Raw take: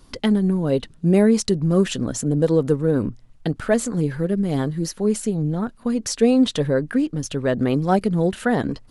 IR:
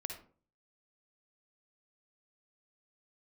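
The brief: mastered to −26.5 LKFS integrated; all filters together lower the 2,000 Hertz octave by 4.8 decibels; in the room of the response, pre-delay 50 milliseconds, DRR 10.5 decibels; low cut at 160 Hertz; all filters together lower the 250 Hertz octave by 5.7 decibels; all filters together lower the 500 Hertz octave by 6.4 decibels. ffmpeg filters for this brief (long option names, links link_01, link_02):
-filter_complex "[0:a]highpass=160,equalizer=frequency=250:width_type=o:gain=-4.5,equalizer=frequency=500:width_type=o:gain=-6,equalizer=frequency=2000:width_type=o:gain=-6,asplit=2[link_01][link_02];[1:a]atrim=start_sample=2205,adelay=50[link_03];[link_02][link_03]afir=irnorm=-1:irlink=0,volume=-9.5dB[link_04];[link_01][link_04]amix=inputs=2:normalize=0,volume=-0.5dB"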